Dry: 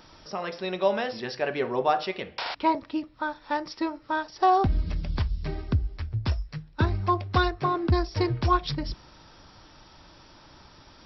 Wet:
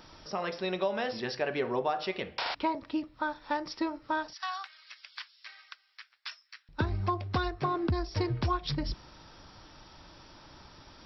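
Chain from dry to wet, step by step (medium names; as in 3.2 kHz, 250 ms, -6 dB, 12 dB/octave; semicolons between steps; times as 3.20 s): 4.33–6.69 s: high-pass 1.4 kHz 24 dB/octave; compression 6:1, threshold -25 dBFS, peak gain reduction 8.5 dB; trim -1 dB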